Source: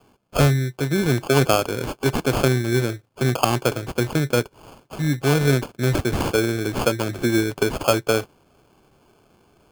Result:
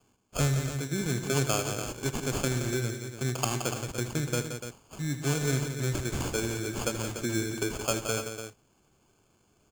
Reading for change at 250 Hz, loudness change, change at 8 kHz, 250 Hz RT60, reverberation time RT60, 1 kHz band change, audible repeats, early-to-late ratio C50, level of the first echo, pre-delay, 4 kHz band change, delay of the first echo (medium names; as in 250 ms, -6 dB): -10.0 dB, -9.0 dB, -1.0 dB, no reverb, no reverb, -11.0 dB, 3, no reverb, -12.5 dB, no reverb, -7.5 dB, 80 ms